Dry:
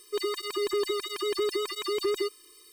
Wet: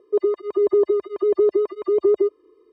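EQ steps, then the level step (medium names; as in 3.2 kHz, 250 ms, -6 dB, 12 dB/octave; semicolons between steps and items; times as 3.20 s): high-pass 61 Hz 24 dB/octave; resonant low-pass 620 Hz, resonance Q 4.9; +6.5 dB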